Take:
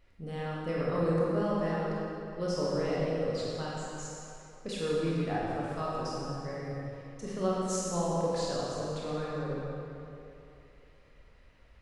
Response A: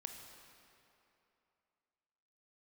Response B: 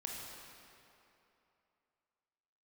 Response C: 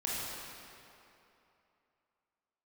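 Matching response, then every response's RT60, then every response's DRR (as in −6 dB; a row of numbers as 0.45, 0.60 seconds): C; 2.9, 2.9, 2.9 seconds; 4.0, −2.0, −6.5 decibels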